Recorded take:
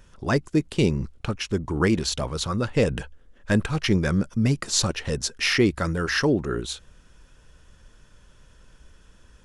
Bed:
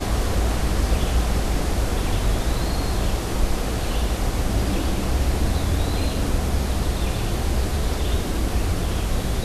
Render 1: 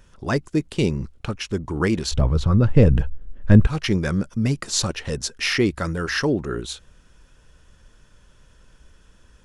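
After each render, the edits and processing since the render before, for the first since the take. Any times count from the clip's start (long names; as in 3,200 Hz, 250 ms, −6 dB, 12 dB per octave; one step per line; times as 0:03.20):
0:02.11–0:03.67: RIAA equalisation playback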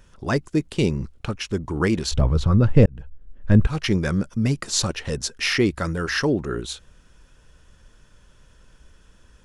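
0:02.86–0:03.83: fade in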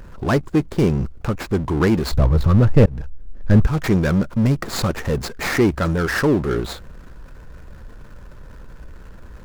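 running median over 15 samples
power curve on the samples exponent 0.7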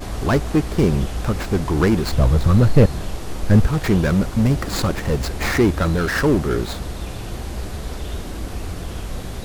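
mix in bed −6 dB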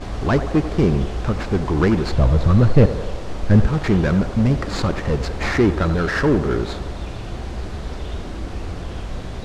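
high-frequency loss of the air 86 metres
feedback echo with a band-pass in the loop 88 ms, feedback 76%, band-pass 730 Hz, level −9.5 dB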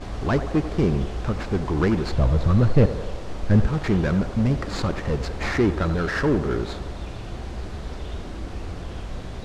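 level −4 dB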